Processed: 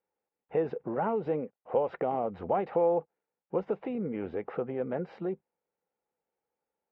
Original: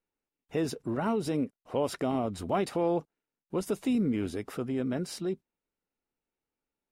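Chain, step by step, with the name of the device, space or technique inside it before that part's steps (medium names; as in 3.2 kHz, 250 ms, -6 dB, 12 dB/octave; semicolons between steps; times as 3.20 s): bass amplifier (compression 4:1, threshold -29 dBFS, peak gain reduction 5.5 dB; cabinet simulation 90–2300 Hz, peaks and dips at 110 Hz -8 dB, 270 Hz -7 dB, 500 Hz +10 dB, 810 Hz +9 dB)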